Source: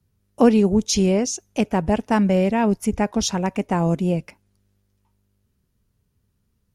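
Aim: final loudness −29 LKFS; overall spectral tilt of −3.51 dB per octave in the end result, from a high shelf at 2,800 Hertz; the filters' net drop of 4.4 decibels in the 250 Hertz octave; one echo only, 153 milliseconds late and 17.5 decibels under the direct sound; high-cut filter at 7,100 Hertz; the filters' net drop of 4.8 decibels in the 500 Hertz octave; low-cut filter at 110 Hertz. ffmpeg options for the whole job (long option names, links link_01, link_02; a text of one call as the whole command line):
ffmpeg -i in.wav -af "highpass=110,lowpass=7100,equalizer=frequency=250:width_type=o:gain=-4.5,equalizer=frequency=500:width_type=o:gain=-5,highshelf=frequency=2800:gain=9,aecho=1:1:153:0.133,volume=-6.5dB" out.wav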